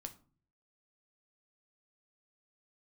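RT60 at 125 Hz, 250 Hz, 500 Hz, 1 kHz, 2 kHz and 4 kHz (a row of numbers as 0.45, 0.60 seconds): 0.80, 0.60, 0.45, 0.40, 0.30, 0.25 seconds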